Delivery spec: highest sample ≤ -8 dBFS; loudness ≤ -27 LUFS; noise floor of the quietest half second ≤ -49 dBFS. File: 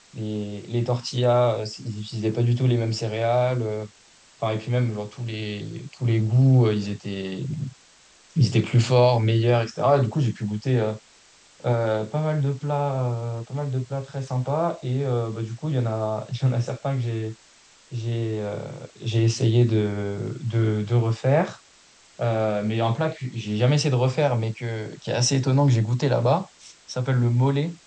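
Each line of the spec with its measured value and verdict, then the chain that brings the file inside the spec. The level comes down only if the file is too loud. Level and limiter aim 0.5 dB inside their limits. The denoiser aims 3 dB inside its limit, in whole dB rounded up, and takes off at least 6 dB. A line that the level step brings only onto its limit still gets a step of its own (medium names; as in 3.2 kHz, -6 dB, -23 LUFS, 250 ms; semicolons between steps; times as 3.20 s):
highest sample -7.0 dBFS: fail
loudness -24.0 LUFS: fail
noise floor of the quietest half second -54 dBFS: pass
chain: trim -3.5 dB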